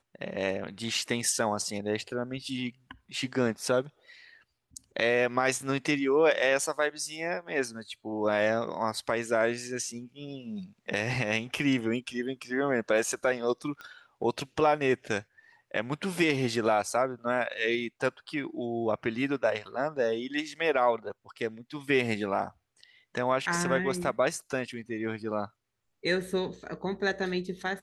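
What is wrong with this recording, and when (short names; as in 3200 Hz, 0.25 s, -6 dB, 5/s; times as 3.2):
13.81 pop -28 dBFS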